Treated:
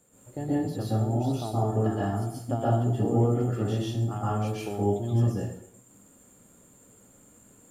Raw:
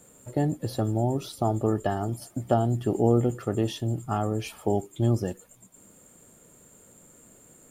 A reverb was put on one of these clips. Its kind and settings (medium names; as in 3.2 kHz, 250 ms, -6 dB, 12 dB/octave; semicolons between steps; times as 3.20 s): plate-style reverb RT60 0.66 s, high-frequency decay 0.75×, pre-delay 110 ms, DRR -7.5 dB; trim -10 dB